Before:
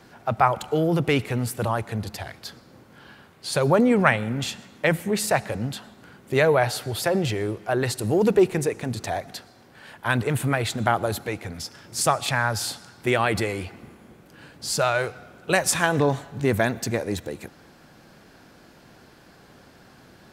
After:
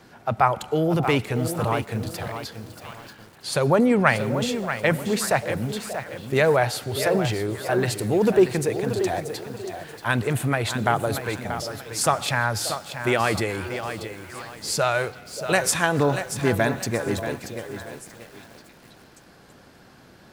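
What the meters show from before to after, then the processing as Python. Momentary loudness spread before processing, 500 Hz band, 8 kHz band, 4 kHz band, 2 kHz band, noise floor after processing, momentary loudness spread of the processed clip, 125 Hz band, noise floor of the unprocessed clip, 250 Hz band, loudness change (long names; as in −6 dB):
14 LU, +1.0 dB, +0.5 dB, +0.5 dB, +0.5 dB, −51 dBFS, 15 LU, +0.5 dB, −52 dBFS, +0.5 dB, 0.0 dB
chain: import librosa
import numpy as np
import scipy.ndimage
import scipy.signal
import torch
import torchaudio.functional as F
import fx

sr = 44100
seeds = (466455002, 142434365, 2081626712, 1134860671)

y = fx.echo_stepped(x, sr, ms=584, hz=490.0, octaves=1.4, feedback_pct=70, wet_db=-11)
y = fx.echo_crushed(y, sr, ms=633, feedback_pct=35, bits=7, wet_db=-9.0)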